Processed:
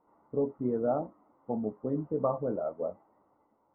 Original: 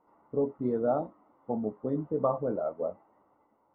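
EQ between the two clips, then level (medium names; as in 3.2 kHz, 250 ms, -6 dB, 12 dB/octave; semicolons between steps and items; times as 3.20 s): distance through air 490 m; 0.0 dB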